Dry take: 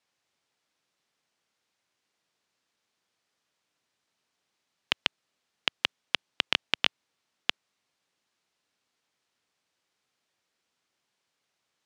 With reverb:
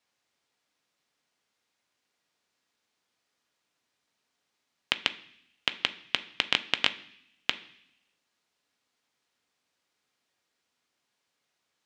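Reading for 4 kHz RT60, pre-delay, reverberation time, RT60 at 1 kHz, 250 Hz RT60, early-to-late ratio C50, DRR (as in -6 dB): 0.85 s, 3 ms, 0.70 s, 0.70 s, 0.95 s, 16.5 dB, 9.0 dB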